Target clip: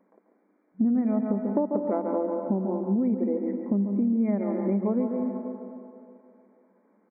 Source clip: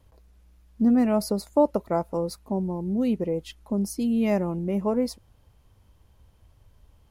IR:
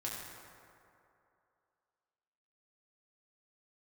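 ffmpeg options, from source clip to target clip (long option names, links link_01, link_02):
-filter_complex "[0:a]asplit=2[link_01][link_02];[1:a]atrim=start_sample=2205,adelay=140[link_03];[link_02][link_03]afir=irnorm=-1:irlink=0,volume=-8dB[link_04];[link_01][link_04]amix=inputs=2:normalize=0,afftfilt=real='re*between(b*sr/4096,190,2400)':imag='im*between(b*sr/4096,190,2400)':win_size=4096:overlap=0.75,aemphasis=mode=reproduction:type=riaa,asplit=2[link_05][link_06];[link_06]adelay=139.9,volume=-14dB,highshelf=frequency=4000:gain=-3.15[link_07];[link_05][link_07]amix=inputs=2:normalize=0,acompressor=threshold=-22dB:ratio=6"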